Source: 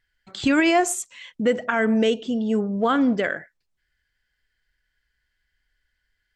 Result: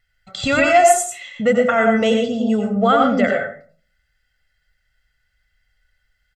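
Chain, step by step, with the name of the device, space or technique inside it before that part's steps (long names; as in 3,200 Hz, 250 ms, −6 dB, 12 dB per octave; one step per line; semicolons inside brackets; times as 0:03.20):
microphone above a desk (comb filter 1.5 ms, depth 85%; convolution reverb RT60 0.45 s, pre-delay 85 ms, DRR 1.5 dB)
level +2 dB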